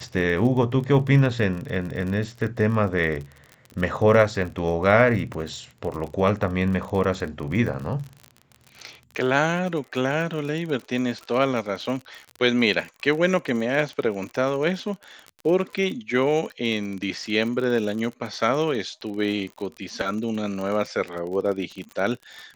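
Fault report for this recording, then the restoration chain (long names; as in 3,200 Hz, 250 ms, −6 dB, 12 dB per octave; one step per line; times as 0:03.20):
surface crackle 42 per second −30 dBFS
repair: click removal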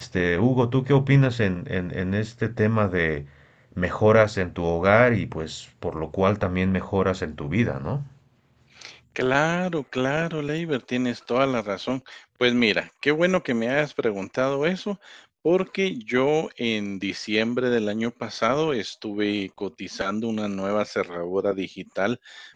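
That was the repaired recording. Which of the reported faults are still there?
none of them is left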